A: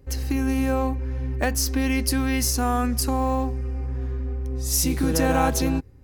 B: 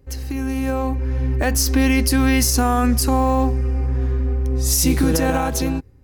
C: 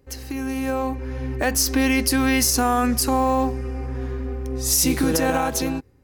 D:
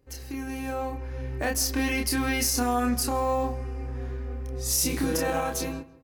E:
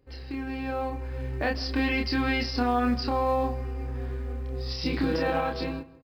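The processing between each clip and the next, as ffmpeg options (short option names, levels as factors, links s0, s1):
-af "alimiter=limit=0.178:level=0:latency=1:release=79,dynaudnorm=f=200:g=9:m=2.82,volume=0.891"
-af "lowshelf=f=140:g=-11.5"
-filter_complex "[0:a]asplit=2[s0][s1];[s1]adelay=29,volume=0.668[s2];[s0][s2]amix=inputs=2:normalize=0,asplit=2[s3][s4];[s4]adelay=161,lowpass=f=2200:p=1,volume=0.126,asplit=2[s5][s6];[s6]adelay=161,lowpass=f=2200:p=1,volume=0.33,asplit=2[s7][s8];[s8]adelay=161,lowpass=f=2200:p=1,volume=0.33[s9];[s3][s5][s7][s9]amix=inputs=4:normalize=0,volume=0.422"
-filter_complex "[0:a]aresample=11025,aresample=44100,asplit=2[s0][s1];[s1]acrusher=bits=5:mode=log:mix=0:aa=0.000001,volume=0.266[s2];[s0][s2]amix=inputs=2:normalize=0,volume=0.841"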